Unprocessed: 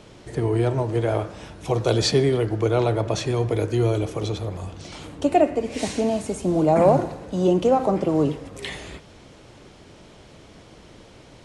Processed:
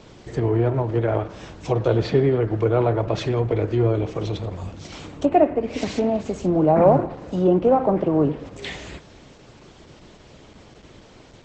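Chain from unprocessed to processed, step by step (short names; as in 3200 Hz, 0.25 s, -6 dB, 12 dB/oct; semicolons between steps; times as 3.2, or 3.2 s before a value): treble ducked by the level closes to 1900 Hz, closed at -17 dBFS; gain +1.5 dB; Opus 12 kbps 48000 Hz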